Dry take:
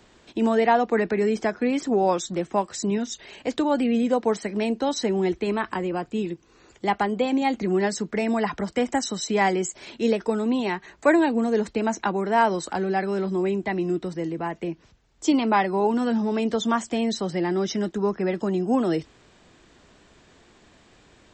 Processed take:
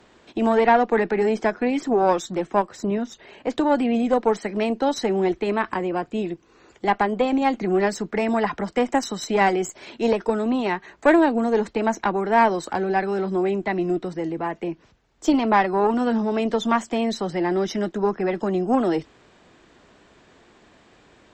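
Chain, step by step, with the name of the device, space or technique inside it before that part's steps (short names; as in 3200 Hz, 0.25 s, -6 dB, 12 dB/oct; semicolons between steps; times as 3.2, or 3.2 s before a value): tube preamp driven hard (tube stage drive 13 dB, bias 0.65; low shelf 160 Hz -7.5 dB; high shelf 3400 Hz -8 dB); 2.62–3.5 high shelf 2500 Hz -8.5 dB; gain +7 dB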